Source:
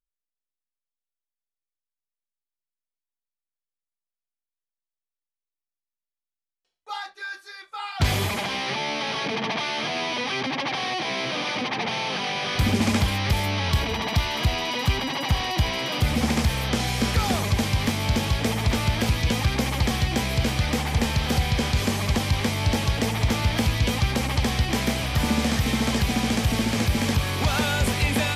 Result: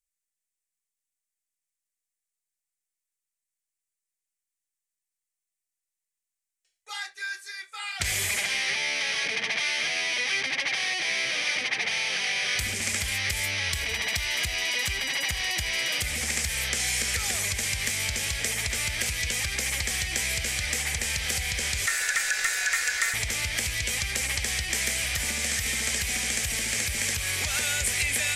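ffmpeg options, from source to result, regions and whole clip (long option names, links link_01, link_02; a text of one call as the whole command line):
ffmpeg -i in.wav -filter_complex "[0:a]asettb=1/sr,asplit=3[link_01][link_02][link_03];[link_01]atrim=end=21.864[link_04];[link_02]atrim=start=21.86:end=23.14,asetpts=PTS-STARTPTS,afade=type=in:duration=0.004:curve=qsin,afade=type=out:start_time=1.276:duration=0.004:curve=qsin,highpass=100,aeval=exprs='val(0)*sin(2*PI*1600*n/s)':channel_layout=same[link_05];[link_03]atrim=start=23.136[link_06];[link_04][link_05]acrossfade=duration=0.004:curve1=hsin:curve2=qsin[link_07];[link_07][link_06]acrossfade=duration=0.004:curve1=qsin:curve2=hsin,bass=frequency=250:gain=0,treble=frequency=4000:gain=7,acompressor=threshold=-22dB:ratio=6,equalizer=frequency=125:width_type=o:width=1:gain=-7,equalizer=frequency=250:width_type=o:width=1:gain=-11,equalizer=frequency=1000:width_type=o:width=1:gain=-10,equalizer=frequency=2000:width_type=o:width=1:gain=12,equalizer=frequency=4000:width_type=o:width=1:gain=-3,equalizer=frequency=8000:width_type=o:width=1:gain=11,volume=-4dB" out.wav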